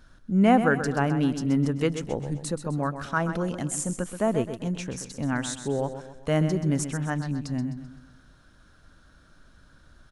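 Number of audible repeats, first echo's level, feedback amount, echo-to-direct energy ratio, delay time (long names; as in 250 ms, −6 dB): 4, −10.0 dB, 44%, −9.0 dB, 129 ms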